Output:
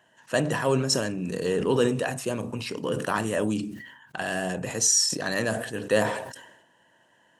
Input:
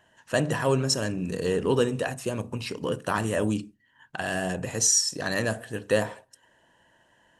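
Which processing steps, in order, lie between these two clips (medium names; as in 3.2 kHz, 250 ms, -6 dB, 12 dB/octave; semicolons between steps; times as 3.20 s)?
high-pass 130 Hz 12 dB/octave; decay stretcher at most 61 dB/s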